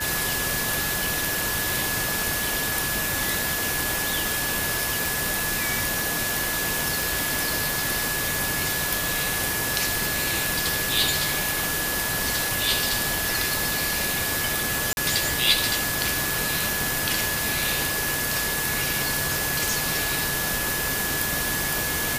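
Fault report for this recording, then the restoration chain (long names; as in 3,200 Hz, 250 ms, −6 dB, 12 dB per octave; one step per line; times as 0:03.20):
whistle 1,700 Hz −30 dBFS
0:05.06: click
0:07.02: click
0:14.93–0:14.97: drop-out 41 ms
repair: click removal
notch filter 1,700 Hz, Q 30
repair the gap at 0:14.93, 41 ms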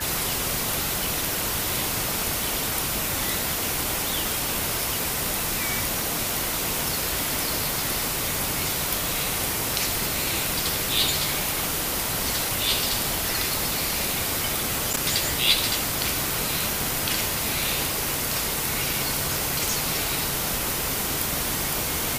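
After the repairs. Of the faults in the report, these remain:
none of them is left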